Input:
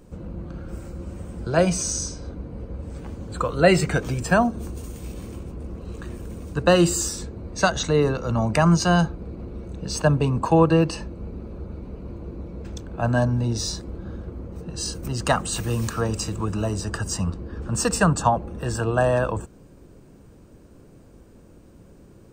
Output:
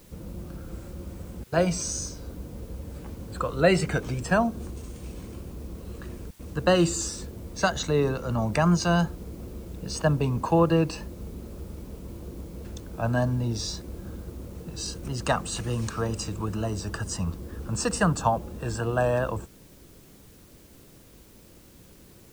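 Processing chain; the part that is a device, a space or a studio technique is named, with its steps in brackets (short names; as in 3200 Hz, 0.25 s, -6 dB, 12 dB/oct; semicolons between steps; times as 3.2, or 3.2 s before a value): worn cassette (LPF 9300 Hz; wow and flutter; level dips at 1.44/6.31, 82 ms -27 dB; white noise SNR 29 dB); gain -4 dB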